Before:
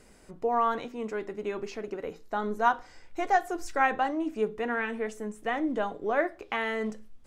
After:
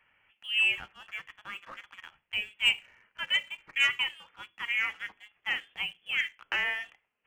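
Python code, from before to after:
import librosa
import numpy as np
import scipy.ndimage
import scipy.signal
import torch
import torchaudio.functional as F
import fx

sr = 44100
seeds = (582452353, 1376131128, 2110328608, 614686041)

y = scipy.signal.sosfilt(scipy.signal.butter(4, 1000.0, 'highpass', fs=sr, output='sos'), x)
y = fx.freq_invert(y, sr, carrier_hz=3800)
y = fx.leveller(y, sr, passes=1)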